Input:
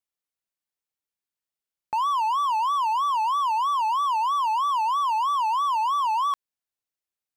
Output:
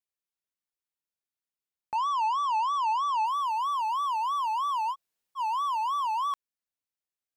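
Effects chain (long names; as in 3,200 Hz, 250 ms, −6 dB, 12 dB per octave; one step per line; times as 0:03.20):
0:01.95–0:03.26: loudspeaker in its box 420–8,500 Hz, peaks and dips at 730 Hz +9 dB, 2,500 Hz +4 dB, 5,300 Hz +4 dB
0:04.93–0:05.38: fill with room tone, crossfade 0.06 s
level −5 dB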